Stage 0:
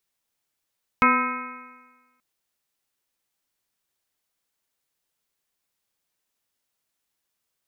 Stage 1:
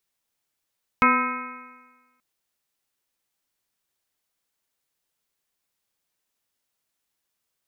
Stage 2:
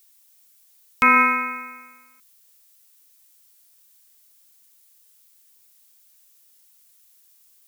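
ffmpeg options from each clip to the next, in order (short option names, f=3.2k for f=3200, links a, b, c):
-af anull
-af "crystalizer=i=5.5:c=0,acrusher=bits=9:mode=log:mix=0:aa=0.000001,alimiter=limit=-10.5dB:level=0:latency=1:release=21,volume=4.5dB"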